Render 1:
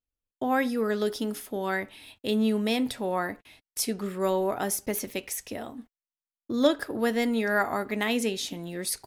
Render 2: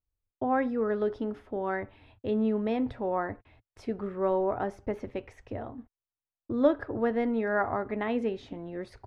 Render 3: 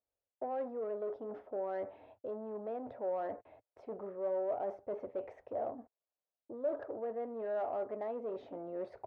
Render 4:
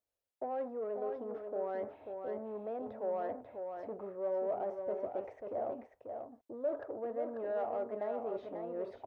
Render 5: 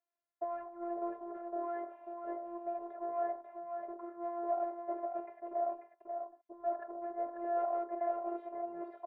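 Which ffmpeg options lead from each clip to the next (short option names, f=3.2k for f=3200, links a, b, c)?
-af "lowpass=1.3k,lowshelf=f=130:t=q:w=3:g=6"
-af "areverse,acompressor=threshold=-37dB:ratio=5,areverse,asoftclip=type=tanh:threshold=-38dB,bandpass=f=600:t=q:w=3.1:csg=0,volume=11.5dB"
-af "aecho=1:1:540:0.501"
-filter_complex "[0:a]highpass=260,lowpass=2.6k,acrossover=split=460 2000:gain=0.178 1 0.2[a][b][c];[a][b][c]amix=inputs=3:normalize=0,afftfilt=real='hypot(re,im)*cos(PI*b)':imag='0':win_size=512:overlap=0.75,volume=7.5dB"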